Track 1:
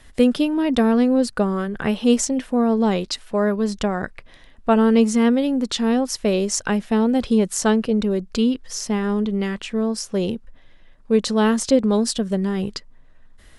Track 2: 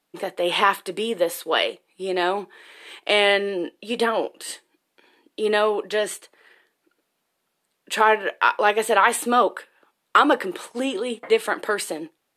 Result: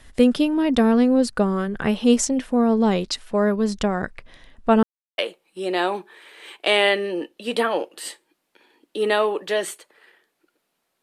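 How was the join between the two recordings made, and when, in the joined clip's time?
track 1
4.83–5.18 mute
5.18 switch to track 2 from 1.61 s

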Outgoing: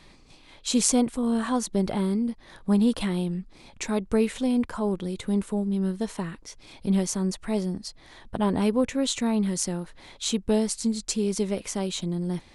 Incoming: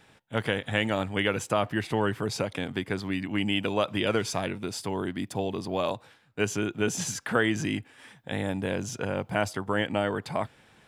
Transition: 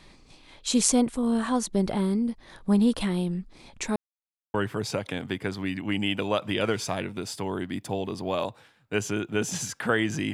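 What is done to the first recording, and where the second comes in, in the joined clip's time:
outgoing
3.96–4.54 mute
4.54 switch to incoming from 2 s

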